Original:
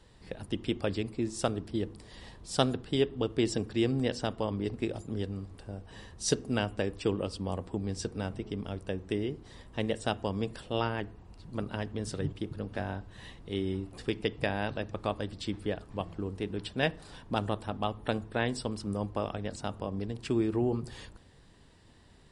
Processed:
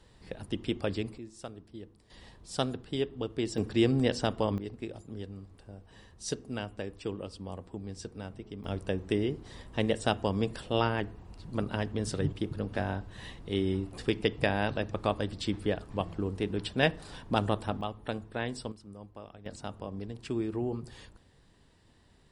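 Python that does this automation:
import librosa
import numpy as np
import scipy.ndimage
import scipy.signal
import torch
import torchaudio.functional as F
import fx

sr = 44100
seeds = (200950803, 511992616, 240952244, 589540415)

y = fx.gain(x, sr, db=fx.steps((0.0, -0.5), (1.18, -13.0), (2.1, -4.0), (3.58, 3.0), (4.58, -6.5), (8.64, 3.0), (17.81, -4.0), (18.72, -14.0), (19.46, -4.0)))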